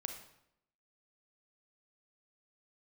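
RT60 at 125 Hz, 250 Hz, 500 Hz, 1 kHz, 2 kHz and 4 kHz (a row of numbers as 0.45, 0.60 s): 0.80, 0.85, 0.80, 0.75, 0.70, 0.60 s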